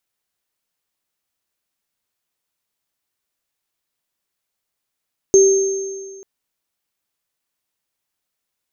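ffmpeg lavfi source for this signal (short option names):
-f lavfi -i "aevalsrc='0.501*pow(10,-3*t/1.69)*sin(2*PI*389*t)+0.211*pow(10,-3*t/1.75)*sin(2*PI*6370*t)':d=0.89:s=44100"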